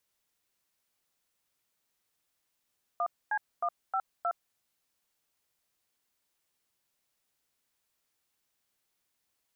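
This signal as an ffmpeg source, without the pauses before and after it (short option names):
-f lavfi -i "aevalsrc='0.0335*clip(min(mod(t,0.312),0.064-mod(t,0.312))/0.002,0,1)*(eq(floor(t/0.312),0)*(sin(2*PI*697*mod(t,0.312))+sin(2*PI*1209*mod(t,0.312)))+eq(floor(t/0.312),1)*(sin(2*PI*852*mod(t,0.312))+sin(2*PI*1633*mod(t,0.312)))+eq(floor(t/0.312),2)*(sin(2*PI*697*mod(t,0.312))+sin(2*PI*1209*mod(t,0.312)))+eq(floor(t/0.312),3)*(sin(2*PI*770*mod(t,0.312))+sin(2*PI*1336*mod(t,0.312)))+eq(floor(t/0.312),4)*(sin(2*PI*697*mod(t,0.312))+sin(2*PI*1336*mod(t,0.312))))':d=1.56:s=44100"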